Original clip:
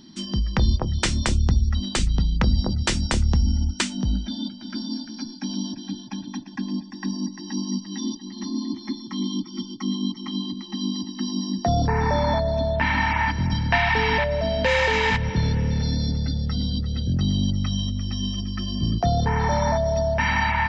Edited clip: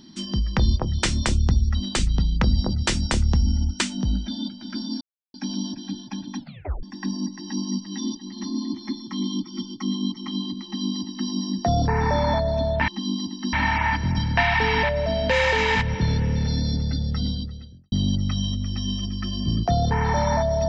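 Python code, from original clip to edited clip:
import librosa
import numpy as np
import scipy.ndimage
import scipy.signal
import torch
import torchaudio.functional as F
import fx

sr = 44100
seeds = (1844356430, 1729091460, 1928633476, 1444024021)

y = fx.edit(x, sr, fx.silence(start_s=5.01, length_s=0.33),
    fx.tape_stop(start_s=6.39, length_s=0.44),
    fx.duplicate(start_s=10.64, length_s=0.65, to_s=12.88),
    fx.fade_out_span(start_s=16.62, length_s=0.65, curve='qua'), tone=tone)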